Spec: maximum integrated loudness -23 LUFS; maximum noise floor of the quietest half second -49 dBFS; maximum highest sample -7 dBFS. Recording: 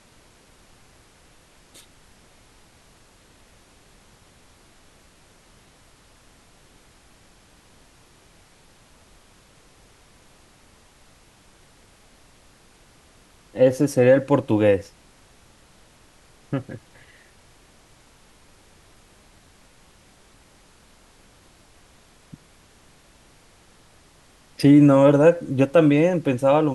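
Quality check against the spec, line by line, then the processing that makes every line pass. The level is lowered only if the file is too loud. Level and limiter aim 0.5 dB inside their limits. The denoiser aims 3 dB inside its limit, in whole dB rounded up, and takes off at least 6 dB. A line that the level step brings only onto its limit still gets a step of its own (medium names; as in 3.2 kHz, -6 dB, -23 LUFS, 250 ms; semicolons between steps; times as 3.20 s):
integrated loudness -18.0 LUFS: fail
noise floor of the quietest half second -54 dBFS: pass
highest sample -5.0 dBFS: fail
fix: trim -5.5 dB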